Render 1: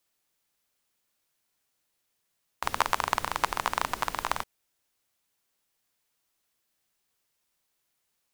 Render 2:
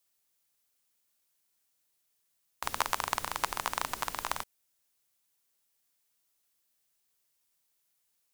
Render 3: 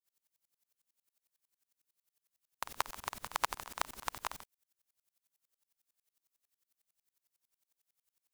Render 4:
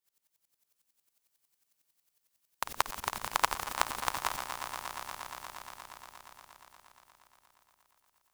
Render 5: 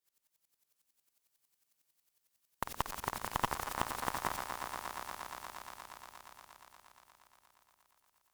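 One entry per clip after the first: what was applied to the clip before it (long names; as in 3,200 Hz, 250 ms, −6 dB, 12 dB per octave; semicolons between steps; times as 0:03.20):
high-shelf EQ 4,800 Hz +8.5 dB; level −5.5 dB
tremolo with a ramp in dB swelling 11 Hz, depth 31 dB; level +2 dB
echo that builds up and dies away 118 ms, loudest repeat 5, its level −14 dB; level +5.5 dB
tube saturation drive 20 dB, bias 0.6; level +1.5 dB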